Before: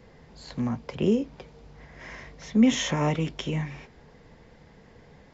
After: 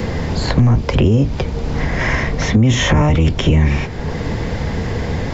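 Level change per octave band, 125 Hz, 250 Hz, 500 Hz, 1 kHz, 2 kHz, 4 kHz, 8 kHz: +19.0 dB, +8.5 dB, +10.5 dB, +13.0 dB, +16.5 dB, +11.5 dB, can't be measured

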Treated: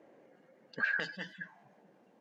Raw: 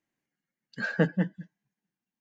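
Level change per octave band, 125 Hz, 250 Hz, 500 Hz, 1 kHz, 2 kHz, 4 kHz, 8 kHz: −22.5 dB, −20.0 dB, −15.5 dB, −5.0 dB, +1.0 dB, +1.5 dB, can't be measured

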